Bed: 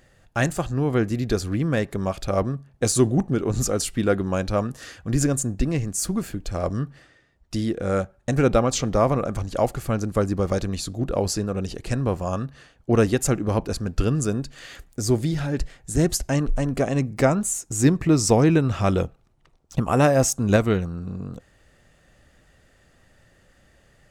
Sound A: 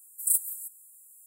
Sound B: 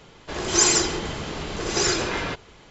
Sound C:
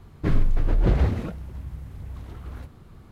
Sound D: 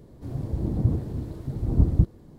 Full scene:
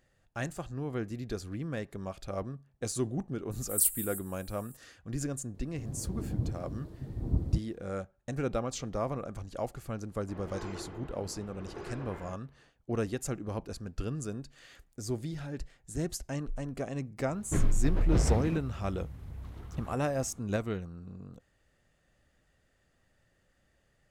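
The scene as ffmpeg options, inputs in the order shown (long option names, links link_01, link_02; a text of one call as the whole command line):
ffmpeg -i bed.wav -i cue0.wav -i cue1.wav -i cue2.wav -i cue3.wav -filter_complex "[0:a]volume=-13.5dB[link_01];[2:a]lowpass=1400[link_02];[1:a]atrim=end=1.26,asetpts=PTS-STARTPTS,volume=-2dB,afade=type=in:duration=0.004:curve=hsin,afade=type=out:start_time=1.256:duration=0.004:curve=hsin,adelay=3510[link_03];[4:a]atrim=end=2.38,asetpts=PTS-STARTPTS,volume=-9.5dB,afade=type=in:duration=0.004:curve=hsin,afade=type=out:start_time=2.376:duration=0.004:curve=hsin,adelay=5540[link_04];[link_02]atrim=end=2.7,asetpts=PTS-STARTPTS,volume=-17dB,afade=type=in:duration=0.004:curve=hsin,afade=type=out:start_time=2.696:duration=0.004:curve=hsin,adelay=10000[link_05];[3:a]atrim=end=3.11,asetpts=PTS-STARTPTS,volume=-6dB,afade=type=in:duration=0.004:curve=hsin,afade=type=out:start_time=3.106:duration=0.004:curve=hsin,adelay=17280[link_06];[link_01][link_03][link_04][link_05][link_06]amix=inputs=5:normalize=0" out.wav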